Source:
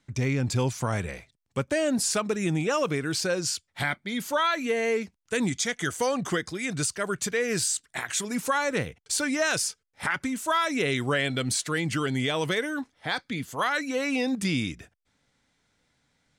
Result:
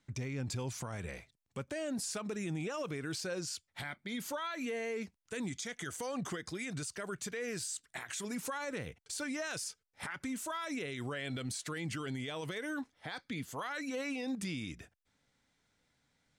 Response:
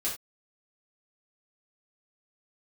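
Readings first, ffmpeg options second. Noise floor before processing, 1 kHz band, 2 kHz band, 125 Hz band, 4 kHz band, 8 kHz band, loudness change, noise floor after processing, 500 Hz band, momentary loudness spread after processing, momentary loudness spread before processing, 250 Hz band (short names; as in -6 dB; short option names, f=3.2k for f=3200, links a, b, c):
-76 dBFS, -14.0 dB, -12.5 dB, -11.5 dB, -12.5 dB, -12.0 dB, -12.0 dB, -81 dBFS, -12.5 dB, 6 LU, 6 LU, -10.5 dB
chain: -af "alimiter=level_in=1dB:limit=-24dB:level=0:latency=1:release=80,volume=-1dB,volume=-5.5dB"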